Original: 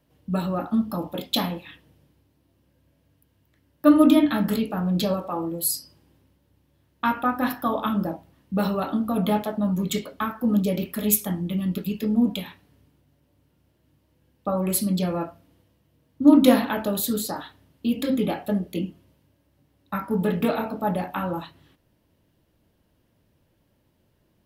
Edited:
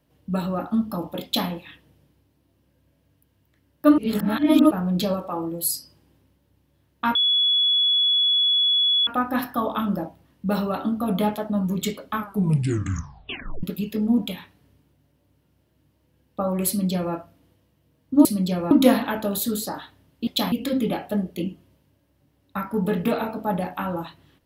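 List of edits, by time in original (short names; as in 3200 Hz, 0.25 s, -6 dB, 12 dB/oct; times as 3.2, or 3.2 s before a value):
1.24–1.49 copy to 17.89
3.98–4.71 reverse
7.15 add tone 3390 Hz -16.5 dBFS 1.92 s
10.24 tape stop 1.47 s
14.76–15.22 copy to 16.33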